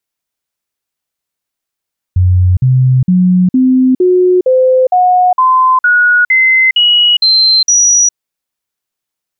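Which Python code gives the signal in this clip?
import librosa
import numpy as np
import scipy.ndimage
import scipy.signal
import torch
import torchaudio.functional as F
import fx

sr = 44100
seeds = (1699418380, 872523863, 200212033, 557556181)

y = fx.stepped_sweep(sr, from_hz=91.0, direction='up', per_octave=2, tones=13, dwell_s=0.41, gap_s=0.05, level_db=-5.0)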